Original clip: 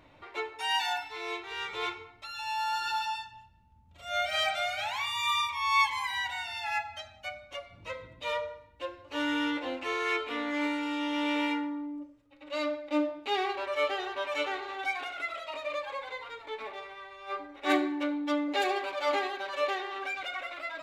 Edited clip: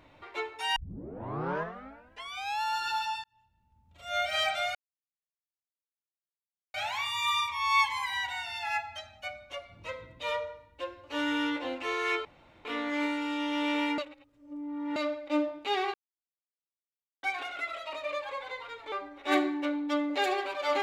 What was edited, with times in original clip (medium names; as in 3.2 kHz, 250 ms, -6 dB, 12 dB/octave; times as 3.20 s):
0.76 s: tape start 1.86 s
3.24–4.13 s: fade in
4.75 s: insert silence 1.99 s
10.26 s: insert room tone 0.40 s
11.59–12.57 s: reverse
13.55–14.84 s: mute
16.53–17.30 s: delete